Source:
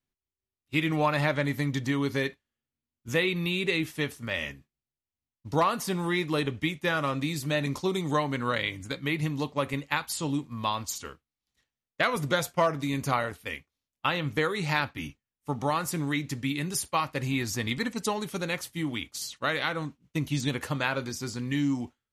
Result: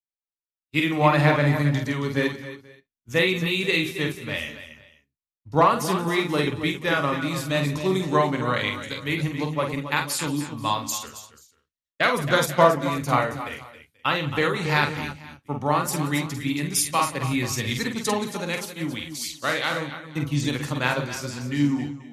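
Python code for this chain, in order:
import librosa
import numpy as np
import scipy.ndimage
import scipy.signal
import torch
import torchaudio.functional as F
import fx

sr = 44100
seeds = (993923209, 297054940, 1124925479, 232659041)

y = fx.echo_multitap(x, sr, ms=(48, 182, 272, 285, 488, 527), db=(-5.5, -16.5, -9.5, -11.0, -16.0, -17.0))
y = fx.band_widen(y, sr, depth_pct=70)
y = F.gain(torch.from_numpy(y), 3.0).numpy()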